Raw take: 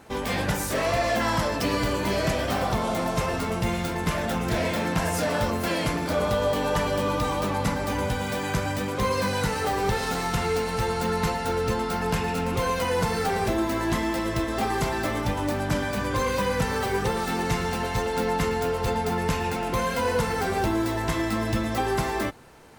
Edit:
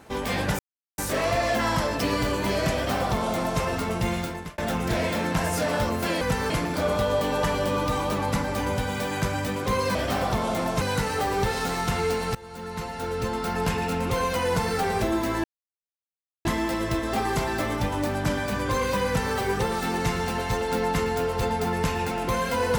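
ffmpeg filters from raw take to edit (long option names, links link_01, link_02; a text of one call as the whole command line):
ffmpeg -i in.wav -filter_complex "[0:a]asplit=9[link_01][link_02][link_03][link_04][link_05][link_06][link_07][link_08][link_09];[link_01]atrim=end=0.59,asetpts=PTS-STARTPTS,afade=type=out:start_time=0.586:duration=0.004:curve=hsin,apad=pad_dur=0.39[link_10];[link_02]atrim=start=0.59:end=4.19,asetpts=PTS-STARTPTS,afade=type=in:duration=0.004:curve=hsin,afade=type=out:start_time=3.19:duration=0.41[link_11];[link_03]atrim=start=4.19:end=5.822,asetpts=PTS-STARTPTS,afade=type=in:duration=0.004:curve=hsin[link_12];[link_04]atrim=start=16.508:end=16.802[link_13];[link_05]atrim=start=5.818:end=9.272[link_14];[link_06]atrim=start=2.348:end=3.212[link_15];[link_07]atrim=start=9.268:end=10.81,asetpts=PTS-STARTPTS,afade=type=out:start_time=1.538:duration=0.004:curve=hsin:silence=0.0891251[link_16];[link_08]atrim=start=10.81:end=13.9,asetpts=PTS-STARTPTS,afade=type=in:duration=1.24:silence=0.0891251,afade=type=out:start_time=3.086:duration=0.004:curve=hsin,apad=pad_dur=1.01[link_17];[link_09]atrim=start=13.9,asetpts=PTS-STARTPTS,afade=type=in:duration=0.004:curve=hsin[link_18];[link_10][link_11][link_12]concat=n=3:v=0:a=1[link_19];[link_19][link_13]acrossfade=duration=0.004:curve1=hsin:curve2=hsin[link_20];[link_20][link_14]acrossfade=duration=0.004:curve1=hsin:curve2=hsin[link_21];[link_21][link_15]acrossfade=duration=0.004:curve1=hsin:curve2=hsin[link_22];[link_16][link_17][link_18]concat=n=3:v=0:a=1[link_23];[link_22][link_23]acrossfade=duration=0.004:curve1=hsin:curve2=hsin" out.wav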